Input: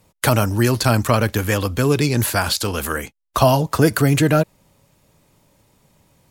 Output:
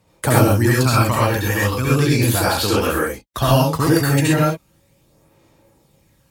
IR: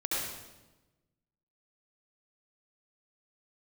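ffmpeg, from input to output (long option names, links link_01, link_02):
-filter_complex "[0:a]highpass=42,asplit=2[link_01][link_02];[link_02]aeval=exprs='val(0)*gte(abs(val(0)),0.0398)':channel_layout=same,volume=-11dB[link_03];[link_01][link_03]amix=inputs=2:normalize=0,aphaser=in_gain=1:out_gain=1:delay=1.1:decay=0.49:speed=0.37:type=sinusoidal[link_04];[1:a]atrim=start_sample=2205,atrim=end_sample=6174[link_05];[link_04][link_05]afir=irnorm=-1:irlink=0,volume=-6.5dB"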